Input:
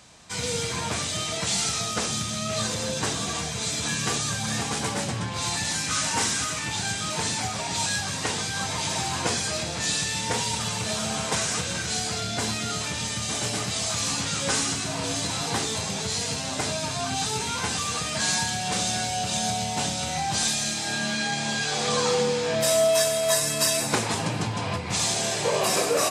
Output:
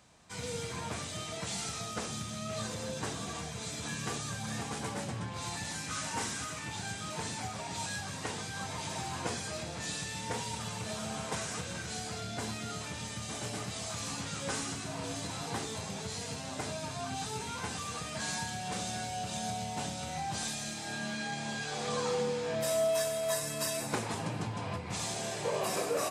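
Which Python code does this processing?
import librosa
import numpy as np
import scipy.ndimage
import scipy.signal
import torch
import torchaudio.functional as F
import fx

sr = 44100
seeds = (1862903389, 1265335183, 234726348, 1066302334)

y = fx.peak_eq(x, sr, hz=5100.0, db=-5.5, octaves=2.4)
y = F.gain(torch.from_numpy(y), -8.0).numpy()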